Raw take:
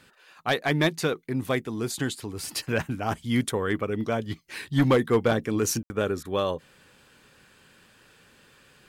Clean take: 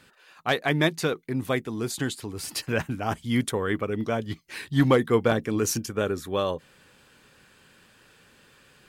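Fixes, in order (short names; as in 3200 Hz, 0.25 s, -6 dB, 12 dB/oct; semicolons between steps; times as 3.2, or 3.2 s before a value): clip repair -14 dBFS; room tone fill 5.83–5.9; interpolate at 6.23, 20 ms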